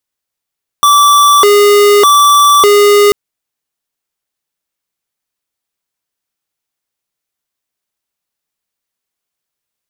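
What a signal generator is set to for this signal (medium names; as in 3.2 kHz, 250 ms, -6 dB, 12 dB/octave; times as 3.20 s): siren hi-lo 410–1160 Hz 0.83 per s square -6 dBFS 2.29 s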